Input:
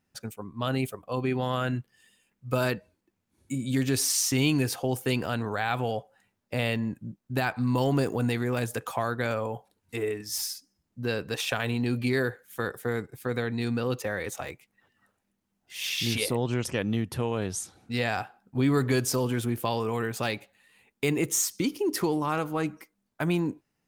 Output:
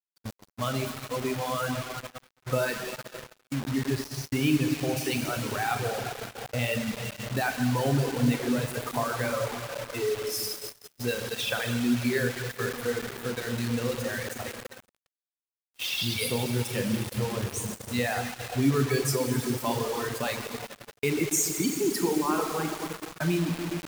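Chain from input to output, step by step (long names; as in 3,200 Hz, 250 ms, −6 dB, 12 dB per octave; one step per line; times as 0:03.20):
spectral dynamics exaggerated over time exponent 1.5
four-comb reverb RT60 3.3 s, combs from 29 ms, DRR −1 dB
in parallel at 0 dB: downward compressor 5 to 1, threshold −38 dBFS, peak gain reduction 17.5 dB
0:03.54–0:04.97: on the sum: Gaussian smoothing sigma 2.3 samples
reverb reduction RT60 1.1 s
high-pass filter 63 Hz 24 dB per octave
bit reduction 6 bits
noise gate −35 dBFS, range −24 dB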